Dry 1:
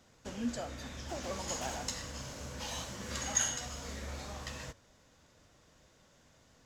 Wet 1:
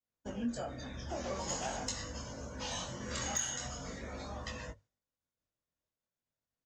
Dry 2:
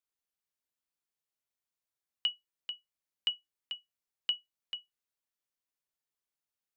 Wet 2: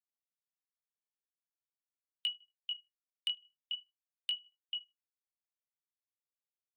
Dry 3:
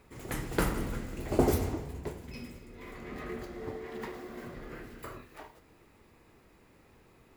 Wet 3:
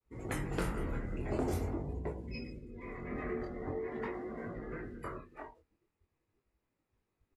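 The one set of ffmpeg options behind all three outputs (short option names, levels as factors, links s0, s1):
-filter_complex "[0:a]asplit=2[s0][s1];[s1]adelay=77,lowpass=f=2600:p=1,volume=0.1,asplit=2[s2][s3];[s3]adelay=77,lowpass=f=2600:p=1,volume=0.44,asplit=2[s4][s5];[s5]adelay=77,lowpass=f=2600:p=1,volume=0.44[s6];[s0][s2][s4][s6]amix=inputs=4:normalize=0,agate=range=0.0224:threshold=0.002:ratio=3:detection=peak,afftdn=nr=20:nf=-49,flanger=delay=18:depth=6.7:speed=0.44,acompressor=threshold=0.0126:ratio=3,lowpass=f=11000:w=0.5412,lowpass=f=11000:w=1.3066,asoftclip=type=hard:threshold=0.0316,volume=1.78"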